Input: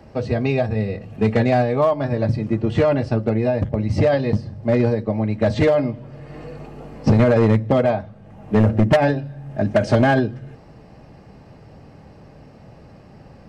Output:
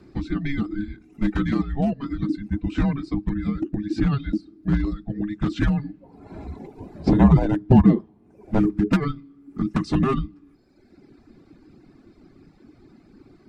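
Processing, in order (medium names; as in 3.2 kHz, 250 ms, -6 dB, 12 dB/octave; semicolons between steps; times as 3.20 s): time-frequency box 6.01–8.58 s, 490–1500 Hz +10 dB; frequency shift -420 Hz; reverb removal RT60 1.2 s; trim -3.5 dB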